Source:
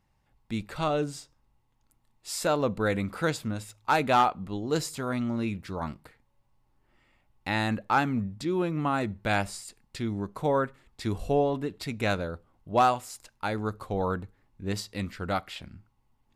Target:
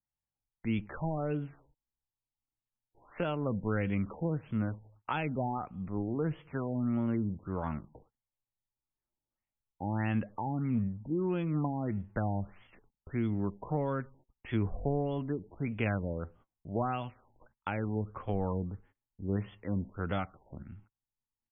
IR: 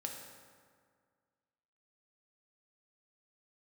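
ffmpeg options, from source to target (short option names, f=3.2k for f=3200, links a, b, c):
-filter_complex "[0:a]acrossover=split=240|3000[a][b][c];[b]acompressor=threshold=-34dB:ratio=5[d];[a][d][c]amix=inputs=3:normalize=0,highshelf=f=4k:g=3.5,atempo=0.76,agate=range=-27dB:threshold=-56dB:ratio=16:detection=peak,afftfilt=real='re*lt(b*sr/1024,940*pow(3500/940,0.5+0.5*sin(2*PI*1.6*pts/sr)))':imag='im*lt(b*sr/1024,940*pow(3500/940,0.5+0.5*sin(2*PI*1.6*pts/sr)))':win_size=1024:overlap=0.75"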